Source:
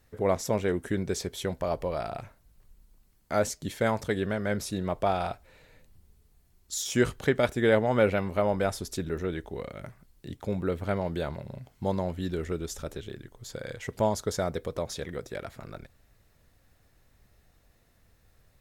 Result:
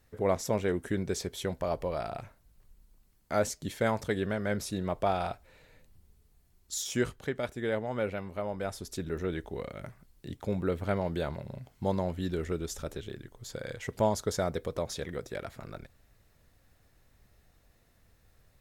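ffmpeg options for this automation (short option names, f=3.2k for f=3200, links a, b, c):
-af "volume=6dB,afade=t=out:st=6.77:d=0.43:silence=0.446684,afade=t=in:st=8.54:d=0.81:silence=0.398107"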